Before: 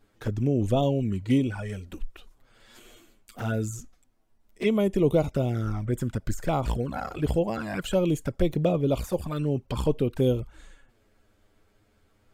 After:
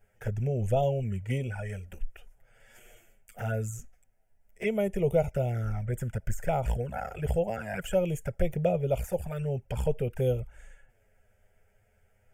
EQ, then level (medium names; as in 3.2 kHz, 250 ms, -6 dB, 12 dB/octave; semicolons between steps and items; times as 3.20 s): static phaser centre 1.1 kHz, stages 6; 0.0 dB